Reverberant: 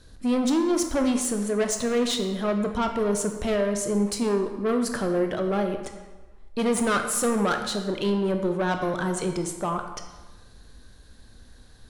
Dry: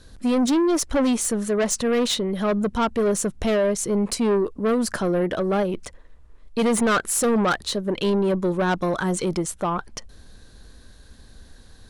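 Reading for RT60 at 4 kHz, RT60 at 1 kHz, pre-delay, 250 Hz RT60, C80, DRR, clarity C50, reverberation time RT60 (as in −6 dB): 0.95 s, 1.2 s, 15 ms, 1.2 s, 8.5 dB, 5.0 dB, 7.0 dB, 1.3 s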